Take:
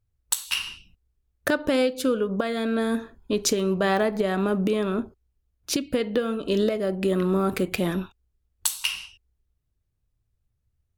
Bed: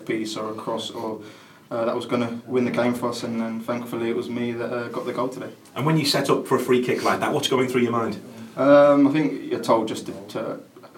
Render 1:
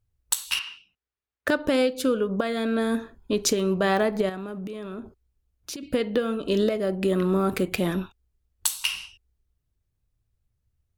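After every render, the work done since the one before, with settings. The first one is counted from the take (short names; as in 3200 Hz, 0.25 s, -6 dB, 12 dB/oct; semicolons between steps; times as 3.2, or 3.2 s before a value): 0.59–1.48 band-pass 1700 Hz, Q 0.73; 4.29–5.83 compressor 12:1, threshold -31 dBFS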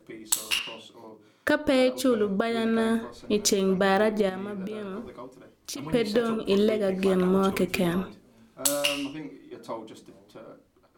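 add bed -17 dB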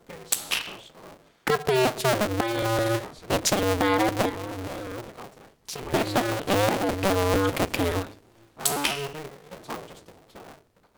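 cycle switcher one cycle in 2, inverted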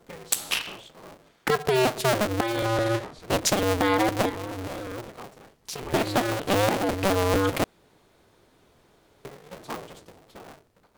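2.65–3.2 high shelf 8700 Hz -10 dB; 7.64–9.25 room tone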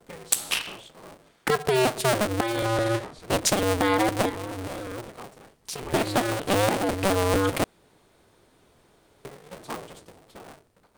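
bell 8900 Hz +6 dB 0.26 oct; gate with hold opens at -55 dBFS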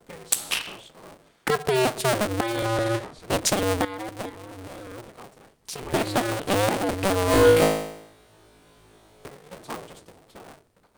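3.85–5.89 fade in, from -14.5 dB; 7.26–9.28 flutter echo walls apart 3.2 m, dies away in 0.76 s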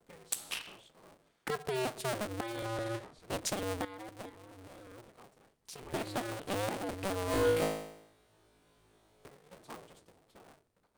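gain -12.5 dB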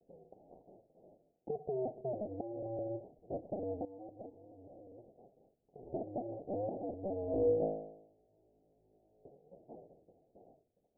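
steep low-pass 750 Hz 72 dB/oct; low shelf 200 Hz -8 dB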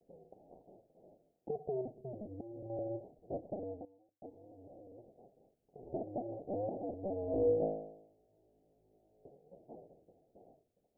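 1.81–2.7 bell 740 Hz -11 dB 1.6 oct; 3.31–4.22 studio fade out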